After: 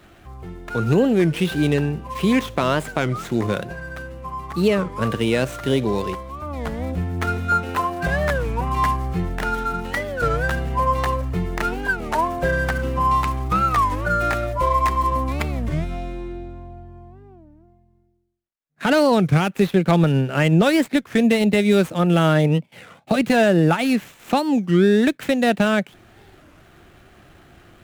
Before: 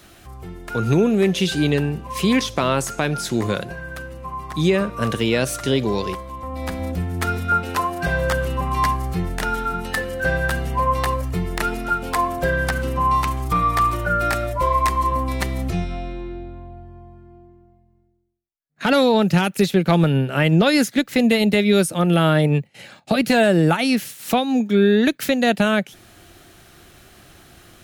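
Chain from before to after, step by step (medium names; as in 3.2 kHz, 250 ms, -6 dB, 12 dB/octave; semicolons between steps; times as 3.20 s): median filter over 9 samples; warped record 33 1/3 rpm, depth 250 cents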